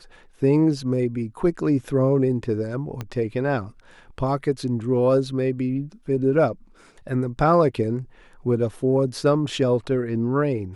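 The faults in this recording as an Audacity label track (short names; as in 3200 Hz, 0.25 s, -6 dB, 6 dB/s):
3.010000	3.010000	pop -16 dBFS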